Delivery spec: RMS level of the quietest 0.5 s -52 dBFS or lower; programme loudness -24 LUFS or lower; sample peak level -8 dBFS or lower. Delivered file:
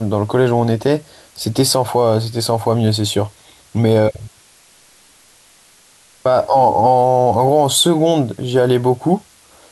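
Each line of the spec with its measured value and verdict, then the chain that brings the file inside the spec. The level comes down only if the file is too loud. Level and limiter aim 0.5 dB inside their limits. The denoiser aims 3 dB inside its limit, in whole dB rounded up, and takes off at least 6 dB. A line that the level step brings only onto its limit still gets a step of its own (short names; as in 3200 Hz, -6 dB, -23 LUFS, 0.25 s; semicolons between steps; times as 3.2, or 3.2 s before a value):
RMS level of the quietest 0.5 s -49 dBFS: fail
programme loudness -15.5 LUFS: fail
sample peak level -3.5 dBFS: fail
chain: gain -9 dB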